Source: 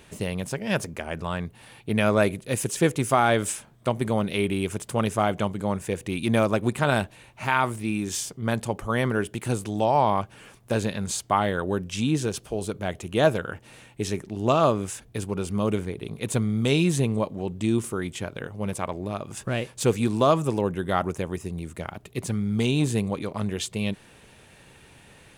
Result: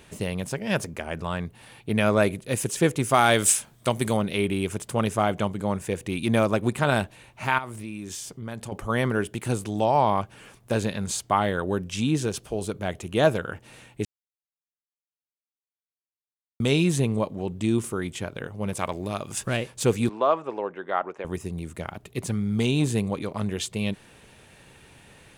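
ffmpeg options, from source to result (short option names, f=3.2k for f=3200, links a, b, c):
-filter_complex "[0:a]asettb=1/sr,asplit=3[a][b][c];[a]atrim=end=3.144[d];[b]atrim=start=3.14:end=4.17,asetpts=PTS-STARTPTS,afade=t=in:d=0.004:c=qsin,afade=t=out:st=1.026:d=0.004:c=qsin,highshelf=f=2.8k:g=11.5[e];[c]atrim=start=4.166[f];[d][e]acrossfade=d=0.004:c1=hsin:c2=qsin[g];[g][f]acrossfade=d=0.004:c1=qsin:c2=hsin,asettb=1/sr,asplit=3[h][i][j];[h]atrim=end=7.584[k];[i]atrim=start=7.58:end=8.72,asetpts=PTS-STARTPTS,afade=t=in:d=0.004:c=qsin,afade=t=out:st=1.136:d=0.004:c=qsin,acompressor=threshold=-34dB:ratio=3:attack=3.2:release=140:knee=1:detection=peak[l];[j]atrim=start=8.716[m];[k][l]acrossfade=d=0.004:c1=hsin:c2=qsin[n];[n][m]acrossfade=d=0.004:c1=qsin:c2=hsin,asettb=1/sr,asplit=3[o][p][q];[o]atrim=end=18.774[r];[p]atrim=start=18.77:end=19.57,asetpts=PTS-STARTPTS,afade=t=in:d=0.004:c=qsin,afade=t=out:st=0.796:d=0.004:c=qsin,highshelf=f=2.2k:g=8[s];[q]atrim=start=19.566[t];[r][s]acrossfade=d=0.004:c1=hsin:c2=qsin[u];[u][t]acrossfade=d=0.004:c1=qsin:c2=hsin,asettb=1/sr,asplit=3[v][w][x];[v]atrim=end=20.094[y];[w]atrim=start=20.09:end=21.25,asetpts=PTS-STARTPTS,afade=t=in:d=0.004:c=qsin,afade=t=out:st=1.156:d=0.004:c=qsin,highpass=500,lowpass=2.1k[z];[x]atrim=start=21.246[aa];[y][z]acrossfade=d=0.004:c1=hsin:c2=qsin[ab];[ab][aa]acrossfade=d=0.004:c1=qsin:c2=hsin,asplit=3[ac][ad][ae];[ac]atrim=end=14.05,asetpts=PTS-STARTPTS,afade=t=out:st=14.046:d=0.004:c=hsin[af];[ad]atrim=start=14.05:end=16.6,asetpts=PTS-STARTPTS,volume=0[ag];[ae]atrim=start=16.6,asetpts=PTS-STARTPTS,afade=t=in:d=0.004:c=hsin[ah];[af][ag][ah]concat=n=3:v=0:a=1"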